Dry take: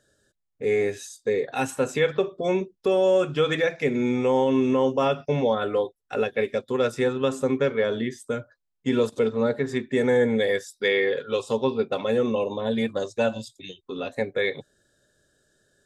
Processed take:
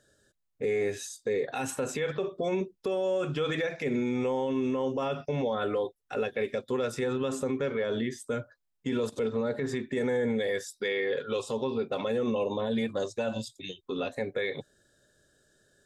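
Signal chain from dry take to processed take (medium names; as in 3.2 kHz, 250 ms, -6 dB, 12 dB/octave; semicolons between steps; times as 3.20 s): peak limiter -21.5 dBFS, peak gain reduction 10 dB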